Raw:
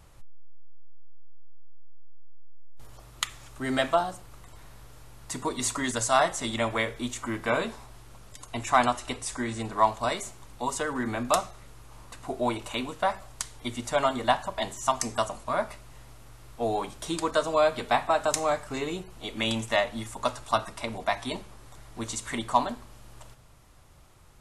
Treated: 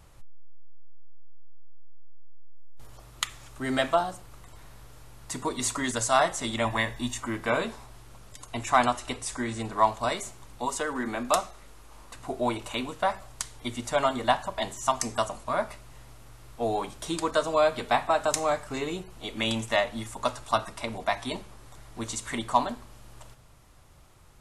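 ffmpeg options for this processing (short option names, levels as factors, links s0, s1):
-filter_complex "[0:a]asettb=1/sr,asplit=3[s0][s1][s2];[s0]atrim=end=6.654[s3];[s1]atrim=start=6.65:end=7.2,asetpts=PTS-STARTPTS,afade=t=in:d=0.004:c=qsin,afade=t=out:st=0.546:d=0.004:c=qsin,aecho=1:1:1.1:0.65,atrim=end_sample=24255[s4];[s2]atrim=start=7.196[s5];[s3][s4]acrossfade=d=0.004:c1=hsin:c2=qsin[s6];[s6][s5]acrossfade=d=0.004:c1=qsin:c2=hsin,asettb=1/sr,asplit=3[s7][s8][s9];[s7]atrim=end=10.654[s10];[s8]atrim=start=10.65:end=12.15,asetpts=PTS-STARTPTS,afade=t=in:d=0.004:c=qsin,afade=t=out:st=1.496:d=0.004:c=qsin,equalizer=f=110:w=1.5:g=-10[s11];[s9]atrim=start=12.146[s12];[s10][s11]acrossfade=d=0.004:c1=hsin:c2=qsin[s13];[s13][s12]acrossfade=d=0.004:c1=qsin:c2=hsin"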